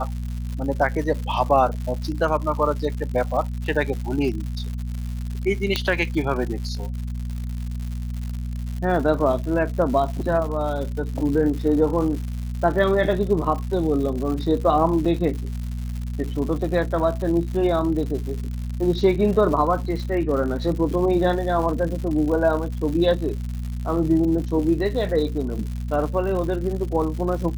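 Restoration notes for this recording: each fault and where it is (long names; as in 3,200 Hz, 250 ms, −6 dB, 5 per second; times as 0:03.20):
surface crackle 170 per second −30 dBFS
mains hum 60 Hz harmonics 4 −28 dBFS
0:05.76: click −7 dBFS
0:15.05–0:15.06: drop-out 5.9 ms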